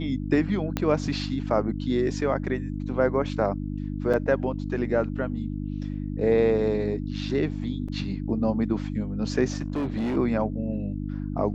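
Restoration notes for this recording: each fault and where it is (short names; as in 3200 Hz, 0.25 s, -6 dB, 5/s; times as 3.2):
hum 50 Hz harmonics 6 -31 dBFS
0.77 pop -11 dBFS
4.13–4.14 gap 6.1 ms
7.88 gap 4.8 ms
9.58–10.17 clipped -23.5 dBFS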